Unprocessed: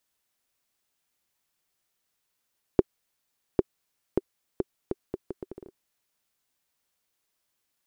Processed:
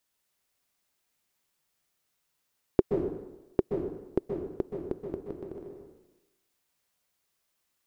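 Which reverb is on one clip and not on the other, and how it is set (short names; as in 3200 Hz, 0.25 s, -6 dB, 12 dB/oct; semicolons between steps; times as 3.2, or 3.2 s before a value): plate-style reverb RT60 1 s, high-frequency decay 0.75×, pre-delay 0.115 s, DRR 2 dB; gain -1 dB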